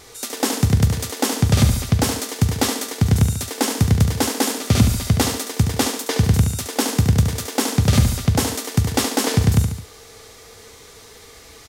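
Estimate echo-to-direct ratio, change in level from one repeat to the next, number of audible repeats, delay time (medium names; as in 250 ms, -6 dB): -5.5 dB, -5.5 dB, 3, 71 ms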